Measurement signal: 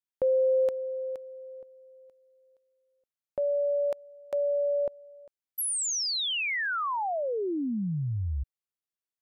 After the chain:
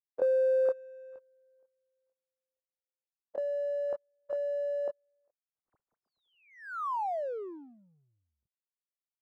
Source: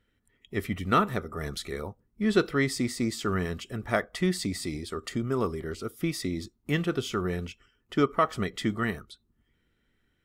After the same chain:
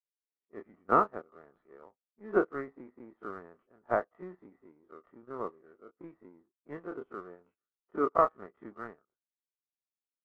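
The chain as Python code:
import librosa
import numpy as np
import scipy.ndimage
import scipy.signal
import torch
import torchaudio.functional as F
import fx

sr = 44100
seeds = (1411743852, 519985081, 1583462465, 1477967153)

p1 = fx.spec_dilate(x, sr, span_ms=60)
p2 = scipy.signal.sosfilt(scipy.signal.butter(2, 390.0, 'highpass', fs=sr, output='sos'), p1)
p3 = fx.power_curve(p2, sr, exponent=1.4)
p4 = scipy.signal.sosfilt(scipy.signal.cheby2(4, 70, 5500.0, 'lowpass', fs=sr, output='sos'), p3)
p5 = np.sign(p4) * np.maximum(np.abs(p4) - 10.0 ** (-47.5 / 20.0), 0.0)
p6 = p4 + (p5 * librosa.db_to_amplitude(-9.5))
y = fx.upward_expand(p6, sr, threshold_db=-46.0, expansion=1.5)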